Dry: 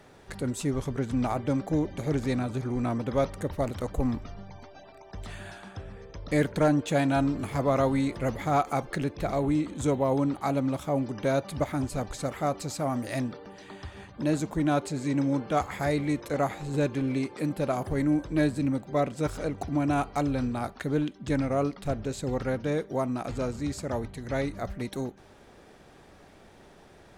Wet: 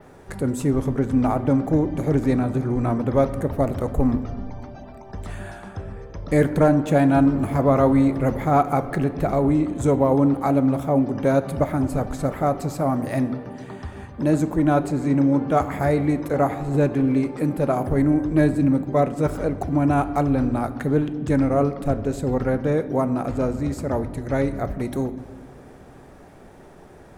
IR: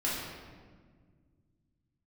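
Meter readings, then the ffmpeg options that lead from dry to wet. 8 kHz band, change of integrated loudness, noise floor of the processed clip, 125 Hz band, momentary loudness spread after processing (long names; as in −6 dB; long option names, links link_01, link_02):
0.0 dB, +7.5 dB, −45 dBFS, +8.0 dB, 14 LU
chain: -filter_complex "[0:a]equalizer=frequency=3800:width_type=o:width=1.8:gain=-10,asplit=2[link_01][link_02];[1:a]atrim=start_sample=2205[link_03];[link_02][link_03]afir=irnorm=-1:irlink=0,volume=-17.5dB[link_04];[link_01][link_04]amix=inputs=2:normalize=0,adynamicequalizer=threshold=0.00126:dfrequency=7700:dqfactor=1:tfrequency=7700:tqfactor=1:attack=5:release=100:ratio=0.375:range=3.5:mode=cutabove:tftype=bell,volume=6.5dB"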